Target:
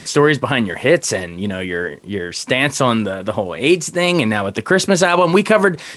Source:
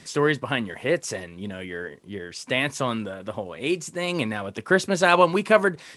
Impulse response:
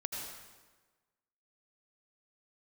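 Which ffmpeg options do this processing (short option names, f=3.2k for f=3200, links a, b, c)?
-af "alimiter=level_in=12.5dB:limit=-1dB:release=50:level=0:latency=1,volume=-1dB"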